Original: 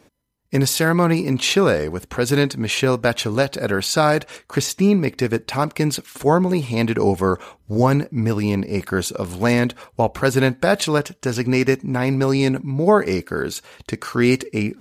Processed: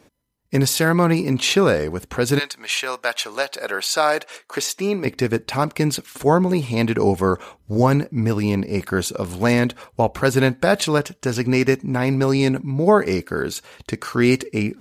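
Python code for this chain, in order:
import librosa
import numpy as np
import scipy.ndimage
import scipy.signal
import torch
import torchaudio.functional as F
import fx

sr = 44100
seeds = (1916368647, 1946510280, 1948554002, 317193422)

y = fx.highpass(x, sr, hz=fx.line((2.38, 1100.0), (5.04, 330.0)), slope=12, at=(2.38, 5.04), fade=0.02)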